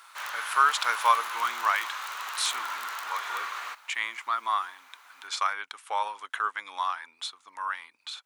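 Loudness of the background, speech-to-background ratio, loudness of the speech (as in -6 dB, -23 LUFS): -34.5 LUFS, 5.0 dB, -29.5 LUFS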